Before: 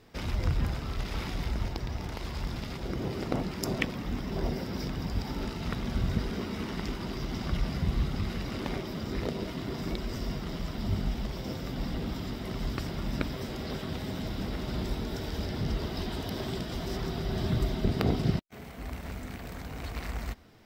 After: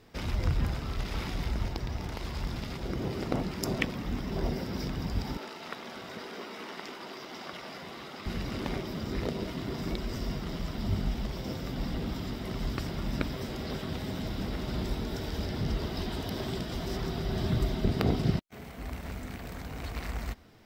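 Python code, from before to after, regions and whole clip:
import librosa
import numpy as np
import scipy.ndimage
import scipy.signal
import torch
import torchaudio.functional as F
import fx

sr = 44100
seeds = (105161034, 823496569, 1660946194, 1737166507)

y = fx.chain(x, sr, fx.highpass(hz=470.0, slope=12),
    fx.high_shelf(hz=4400.0, db=-4.5), at=(5.37, 8.26))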